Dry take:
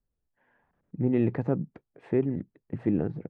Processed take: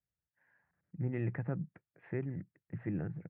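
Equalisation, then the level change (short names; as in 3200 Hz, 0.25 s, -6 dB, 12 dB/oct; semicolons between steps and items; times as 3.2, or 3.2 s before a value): speaker cabinet 120–2100 Hz, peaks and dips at 140 Hz -4 dB, 230 Hz -8 dB, 430 Hz -5 dB; band shelf 520 Hz -10.5 dB 2.7 oct; 0.0 dB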